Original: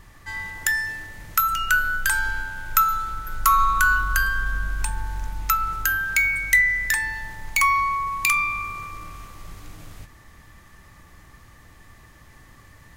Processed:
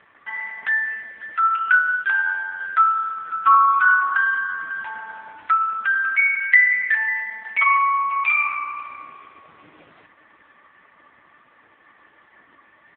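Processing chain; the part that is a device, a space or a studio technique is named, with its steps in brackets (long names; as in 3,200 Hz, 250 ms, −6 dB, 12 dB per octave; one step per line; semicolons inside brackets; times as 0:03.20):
satellite phone (band-pass filter 320–3,100 Hz; single-tap delay 548 ms −16 dB; level +5.5 dB; AMR narrowband 4.75 kbit/s 8,000 Hz)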